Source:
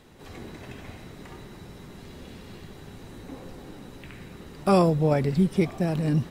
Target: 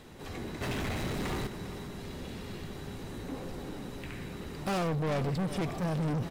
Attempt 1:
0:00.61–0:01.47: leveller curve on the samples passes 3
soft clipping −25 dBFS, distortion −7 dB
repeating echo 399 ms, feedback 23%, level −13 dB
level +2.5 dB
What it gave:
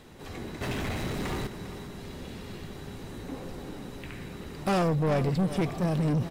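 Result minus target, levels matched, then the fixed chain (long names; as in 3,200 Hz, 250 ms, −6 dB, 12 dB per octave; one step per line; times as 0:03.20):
soft clipping: distortion −4 dB
0:00.61–0:01.47: leveller curve on the samples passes 3
soft clipping −31.5 dBFS, distortion −3 dB
repeating echo 399 ms, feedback 23%, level −13 dB
level +2.5 dB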